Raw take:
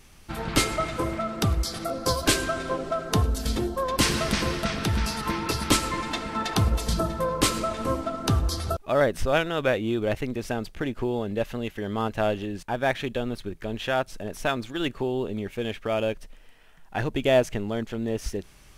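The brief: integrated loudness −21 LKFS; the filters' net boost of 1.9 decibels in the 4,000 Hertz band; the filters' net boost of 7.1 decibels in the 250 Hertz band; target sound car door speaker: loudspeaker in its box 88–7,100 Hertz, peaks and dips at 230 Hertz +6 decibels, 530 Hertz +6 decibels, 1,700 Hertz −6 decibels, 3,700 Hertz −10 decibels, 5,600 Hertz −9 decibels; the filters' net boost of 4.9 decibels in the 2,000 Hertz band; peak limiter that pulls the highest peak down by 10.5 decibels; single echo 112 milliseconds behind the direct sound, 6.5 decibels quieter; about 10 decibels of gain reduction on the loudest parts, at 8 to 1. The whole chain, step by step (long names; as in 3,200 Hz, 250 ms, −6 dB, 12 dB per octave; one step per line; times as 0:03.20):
parametric band 250 Hz +4.5 dB
parametric band 2,000 Hz +8.5 dB
parametric band 4,000 Hz +7 dB
downward compressor 8 to 1, threshold −22 dBFS
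brickwall limiter −17.5 dBFS
loudspeaker in its box 88–7,100 Hz, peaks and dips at 230 Hz +6 dB, 530 Hz +6 dB, 1,700 Hz −6 dB, 3,700 Hz −10 dB, 5,600 Hz −9 dB
single-tap delay 112 ms −6.5 dB
level +6 dB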